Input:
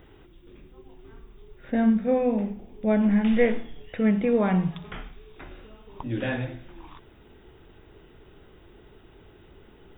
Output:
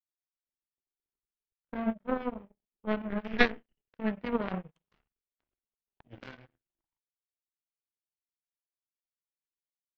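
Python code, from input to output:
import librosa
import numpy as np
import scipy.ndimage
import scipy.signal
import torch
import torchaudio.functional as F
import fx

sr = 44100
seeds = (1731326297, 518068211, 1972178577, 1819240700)

y = fx.formant_shift(x, sr, semitones=-2)
y = fx.power_curve(y, sr, exponent=3.0)
y = F.gain(torch.from_numpy(y), 6.0).numpy()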